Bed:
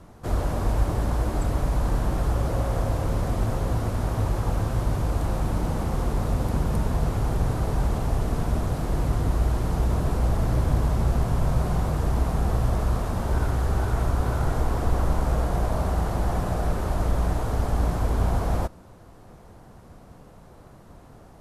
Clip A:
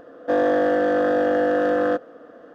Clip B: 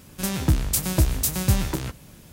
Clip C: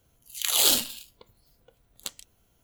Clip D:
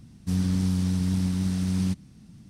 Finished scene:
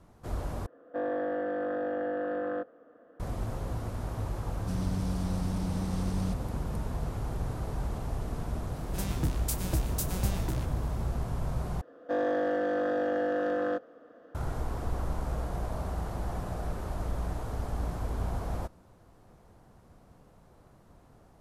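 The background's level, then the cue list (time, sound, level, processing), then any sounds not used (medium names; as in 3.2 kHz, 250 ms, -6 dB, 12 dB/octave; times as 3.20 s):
bed -9.5 dB
0.66 s: replace with A -12.5 dB + low-pass 2.3 kHz
4.40 s: add D -7 dB + peak limiter -18.5 dBFS
8.75 s: add B -11 dB
11.81 s: replace with A -9.5 dB
not used: C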